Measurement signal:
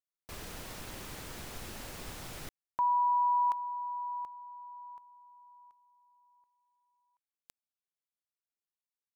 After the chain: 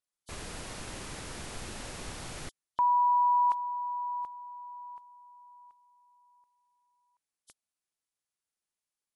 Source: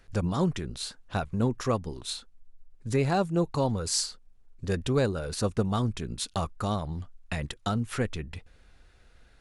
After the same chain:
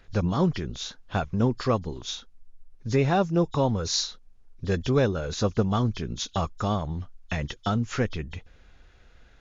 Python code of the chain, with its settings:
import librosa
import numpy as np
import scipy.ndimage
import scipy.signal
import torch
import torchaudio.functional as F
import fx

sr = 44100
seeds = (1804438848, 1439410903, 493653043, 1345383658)

y = fx.freq_compress(x, sr, knee_hz=3000.0, ratio=1.5)
y = y * librosa.db_to_amplitude(3.0)